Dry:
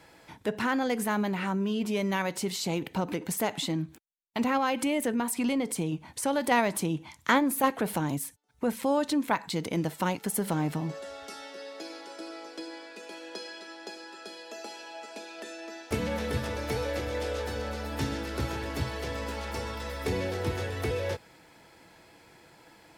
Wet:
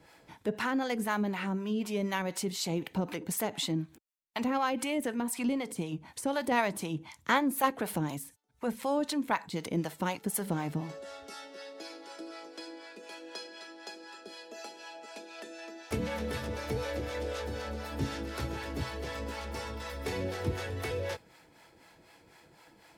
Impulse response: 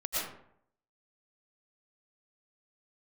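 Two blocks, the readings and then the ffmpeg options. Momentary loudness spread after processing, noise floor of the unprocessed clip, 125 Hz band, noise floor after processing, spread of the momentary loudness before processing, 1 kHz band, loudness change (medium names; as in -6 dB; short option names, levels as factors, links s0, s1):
15 LU, -57 dBFS, -3.5 dB, -61 dBFS, 15 LU, -3.0 dB, -3.5 dB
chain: -filter_complex "[0:a]acrossover=split=580[s0][s1];[s0]aeval=exprs='val(0)*(1-0.7/2+0.7/2*cos(2*PI*4*n/s))':c=same[s2];[s1]aeval=exprs='val(0)*(1-0.7/2-0.7/2*cos(2*PI*4*n/s))':c=same[s3];[s2][s3]amix=inputs=2:normalize=0"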